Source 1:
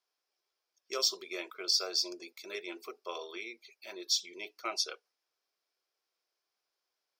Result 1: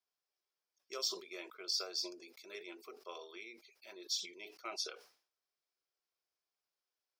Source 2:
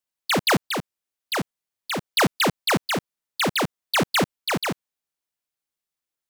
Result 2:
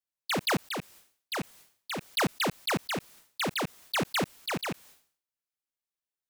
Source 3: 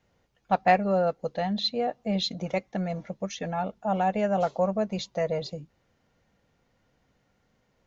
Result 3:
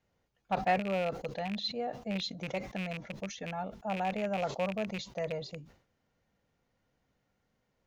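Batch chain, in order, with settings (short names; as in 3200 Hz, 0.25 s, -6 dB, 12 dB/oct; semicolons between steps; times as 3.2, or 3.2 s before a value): rattling part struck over -32 dBFS, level -21 dBFS; sustainer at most 120 dB/s; gain -8 dB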